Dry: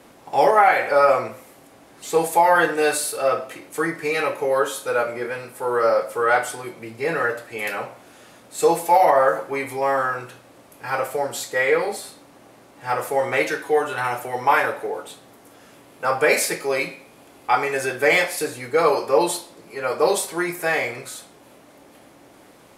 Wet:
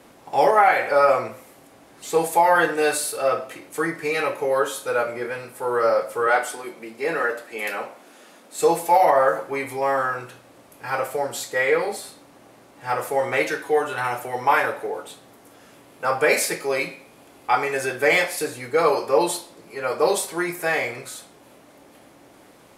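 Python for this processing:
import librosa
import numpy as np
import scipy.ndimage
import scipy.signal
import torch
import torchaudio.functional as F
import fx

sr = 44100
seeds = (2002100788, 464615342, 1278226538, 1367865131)

y = fx.highpass(x, sr, hz=190.0, slope=24, at=(6.27, 8.61))
y = y * 10.0 ** (-1.0 / 20.0)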